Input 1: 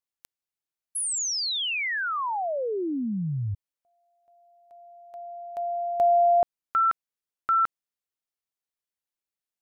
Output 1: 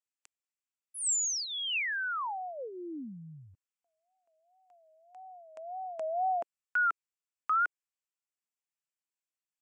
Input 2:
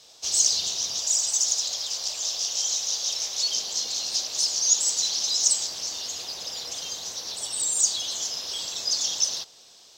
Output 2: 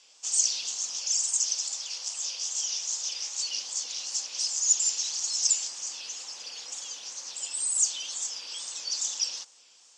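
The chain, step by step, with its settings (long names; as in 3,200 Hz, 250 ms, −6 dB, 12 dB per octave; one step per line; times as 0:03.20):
tape wow and flutter 2.1 Hz 150 cents
loudspeaker in its box 340–8,700 Hz, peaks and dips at 400 Hz −9 dB, 650 Hz −9 dB, 2,600 Hz +4 dB, 3,900 Hz −8 dB, 7,600 Hz +7 dB
level −5 dB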